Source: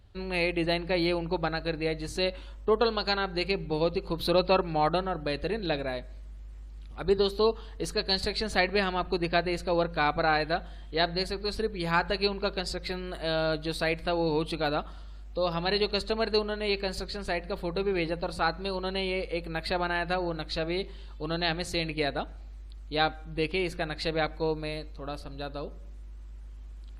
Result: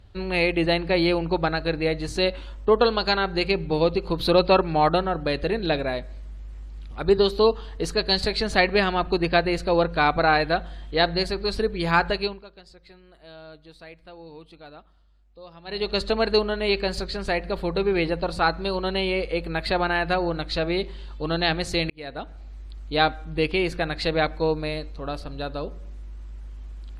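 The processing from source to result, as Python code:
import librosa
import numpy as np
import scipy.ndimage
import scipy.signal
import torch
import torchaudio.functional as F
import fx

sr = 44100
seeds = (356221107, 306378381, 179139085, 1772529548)

y = fx.edit(x, sr, fx.fade_down_up(start_s=12.06, length_s=3.96, db=-22.0, fade_s=0.38),
    fx.fade_in_span(start_s=21.9, length_s=1.04, curve='qsin'), tone=tone)
y = fx.high_shelf(y, sr, hz=11000.0, db=-11.0)
y = F.gain(torch.from_numpy(y), 6.0).numpy()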